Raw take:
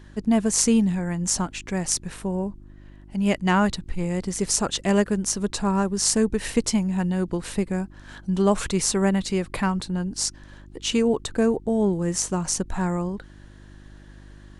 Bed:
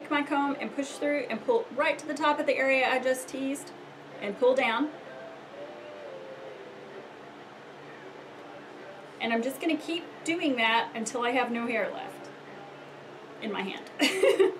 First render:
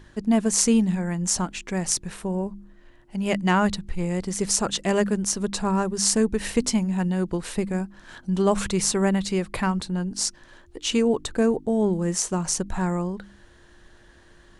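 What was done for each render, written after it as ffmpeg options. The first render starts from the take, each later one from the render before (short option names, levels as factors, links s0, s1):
-af "bandreject=f=50:t=h:w=4,bandreject=f=100:t=h:w=4,bandreject=f=150:t=h:w=4,bandreject=f=200:t=h:w=4,bandreject=f=250:t=h:w=4,bandreject=f=300:t=h:w=4"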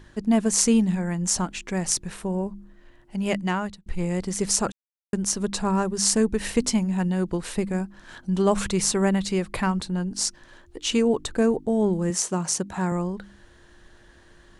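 -filter_complex "[0:a]asettb=1/sr,asplit=3[s0][s1][s2];[s0]atrim=end=12.104[s3];[s1]atrim=start=12.1:end=12.92,asetpts=PTS-STARTPTS,afade=t=in:d=0.004:c=qsin,afade=t=out:st=0.816:d=0.004:c=qsin,highpass=120[s4];[s2]atrim=start=12.916[s5];[s3][s4]acrossfade=d=0.004:c1=hsin:c2=qsin[s6];[s6][s5]acrossfade=d=0.004:c1=qsin:c2=hsin,asplit=4[s7][s8][s9][s10];[s7]atrim=end=3.86,asetpts=PTS-STARTPTS,afade=t=out:st=3.25:d=0.61[s11];[s8]atrim=start=3.86:end=4.72,asetpts=PTS-STARTPTS,afade=t=in:d=0.004:c=hsin,afade=t=out:st=0.856:d=0.004:c=hsin[s12];[s9]atrim=start=4.72:end=5.13,asetpts=PTS-STARTPTS,volume=0[s13];[s10]atrim=start=5.13,asetpts=PTS-STARTPTS,afade=t=in:d=0.004:c=hsin[s14];[s11][s12][s13][s14]concat=n=4:v=0:a=1"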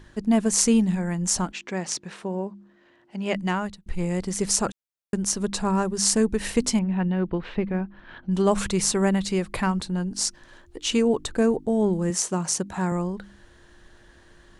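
-filter_complex "[0:a]asplit=3[s0][s1][s2];[s0]afade=t=out:st=1.51:d=0.02[s3];[s1]highpass=210,lowpass=5500,afade=t=in:st=1.51:d=0.02,afade=t=out:st=3.34:d=0.02[s4];[s2]afade=t=in:st=3.34:d=0.02[s5];[s3][s4][s5]amix=inputs=3:normalize=0,asettb=1/sr,asplit=3[s6][s7][s8];[s6]atrim=end=6.794[s9];[s7]atrim=start=6.79:end=8.31,asetpts=PTS-STARTPTS,afade=t=in:d=0.004:c=qsin,afade=t=out:st=1.516:d=0.004:c=qsin,lowpass=f=3300:w=0.5412,lowpass=f=3300:w=1.3066[s10];[s8]atrim=start=8.306[s11];[s9][s10]acrossfade=d=0.004:c1=hsin:c2=qsin[s12];[s12][s11]acrossfade=d=0.004:c1=qsin:c2=hsin"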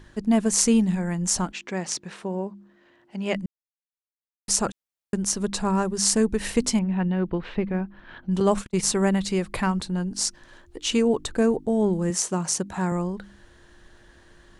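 -filter_complex "[0:a]asettb=1/sr,asplit=3[s0][s1][s2];[s0]atrim=end=8.404[s3];[s1]atrim=start=8.4:end=8.88,asetpts=PTS-STARTPTS,afade=t=in:d=0.004:c=qsin,afade=t=out:st=0.476:d=0.004:c=qsin,agate=range=0.00891:threshold=0.0501:ratio=16:release=100:detection=peak[s4];[s2]atrim=start=8.876[s5];[s3][s4]acrossfade=d=0.004:c1=hsin:c2=qsin[s6];[s6][s5]acrossfade=d=0.004:c1=qsin:c2=hsin,asplit=3[s7][s8][s9];[s7]atrim=end=3.46,asetpts=PTS-STARTPTS,afade=t=out:st=3.456:d=0.004:c=hsin[s10];[s8]atrim=start=3.46:end=4.48,asetpts=PTS-STARTPTS,volume=0[s11];[s9]atrim=start=4.48,asetpts=PTS-STARTPTS,afade=t=in:d=0.004:c=hsin[s12];[s10][s11][s12]concat=n=3:v=0:a=1"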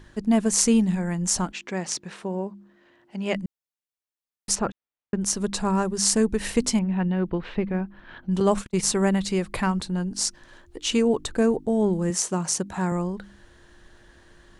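-filter_complex "[0:a]asplit=3[s0][s1][s2];[s0]afade=t=out:st=4.54:d=0.02[s3];[s1]lowpass=2600,afade=t=in:st=4.54:d=0.02,afade=t=out:st=5.2:d=0.02[s4];[s2]afade=t=in:st=5.2:d=0.02[s5];[s3][s4][s5]amix=inputs=3:normalize=0"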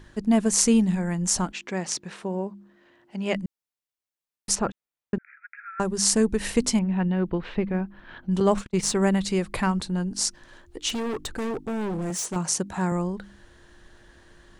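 -filter_complex "[0:a]asettb=1/sr,asplit=3[s0][s1][s2];[s0]atrim=end=5.184[s3];[s1]atrim=start=5.18:end=5.8,asetpts=PTS-STARTPTS,afade=t=in:d=0.004:c=qsin,afade=t=out:st=0.616:d=0.004:c=qsin,asuperpass=centerf=1800:order=20:qfactor=1.6[s4];[s2]atrim=start=5.796[s5];[s3][s4]acrossfade=d=0.004:c1=hsin:c2=qsin[s6];[s6][s5]acrossfade=d=0.004:c1=qsin:c2=hsin,asettb=1/sr,asplit=3[s7][s8][s9];[s7]atrim=end=8.404[s10];[s8]atrim=start=8.4:end=9.02,asetpts=PTS-STARTPTS,afade=t=in:d=0.004:c=qsin,afade=t=out:st=0.616:d=0.004:c=qsin,adynamicsmooth=sensitivity=4.5:basefreq=7200[s11];[s9]atrim=start=9.016[s12];[s10][s11]acrossfade=d=0.004:c1=hsin:c2=qsin[s13];[s13][s12]acrossfade=d=0.004:c1=qsin:c2=hsin,asettb=1/sr,asplit=3[s14][s15][s16];[s14]atrim=end=10.894[s17];[s15]atrim=start=10.89:end=12.36,asetpts=PTS-STARTPTS,afade=t=in:d=0.004:c=qsin,afade=t=out:st=1.466:d=0.004:c=qsin,volume=21.1,asoftclip=hard,volume=0.0473[s18];[s16]atrim=start=12.356[s19];[s17][s18]acrossfade=d=0.004:c1=hsin:c2=qsin[s20];[s20][s19]acrossfade=d=0.004:c1=qsin:c2=hsin"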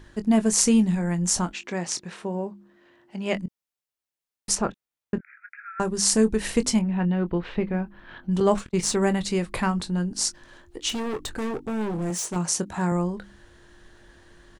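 -filter_complex "[0:a]asplit=2[s0][s1];[s1]adelay=23,volume=0.266[s2];[s0][s2]amix=inputs=2:normalize=0"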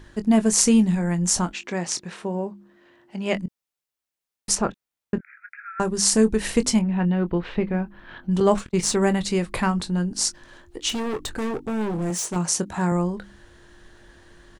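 -af "volume=1.26,alimiter=limit=0.794:level=0:latency=1"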